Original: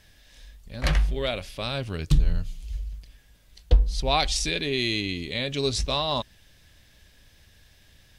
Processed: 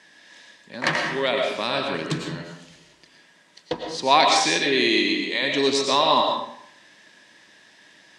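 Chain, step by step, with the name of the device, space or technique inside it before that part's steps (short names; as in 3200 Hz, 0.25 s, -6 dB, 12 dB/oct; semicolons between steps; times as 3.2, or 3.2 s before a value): 4.88–5.41 HPF 120 Hz -> 500 Hz 12 dB/oct; television speaker (speaker cabinet 190–8700 Hz, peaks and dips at 330 Hz +5 dB, 960 Hz +10 dB, 1800 Hz +8 dB); digital reverb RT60 0.69 s, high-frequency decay 0.75×, pre-delay 70 ms, DRR 1.5 dB; gain +3 dB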